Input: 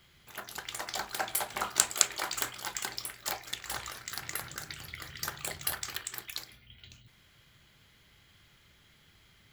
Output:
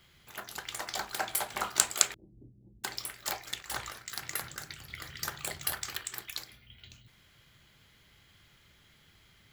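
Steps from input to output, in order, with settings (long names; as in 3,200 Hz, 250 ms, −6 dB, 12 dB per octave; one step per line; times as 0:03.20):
0:02.14–0:02.84: inverse Chebyshev low-pass filter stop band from 1,200 Hz, stop band 70 dB
0:03.62–0:04.90: multiband upward and downward expander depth 70%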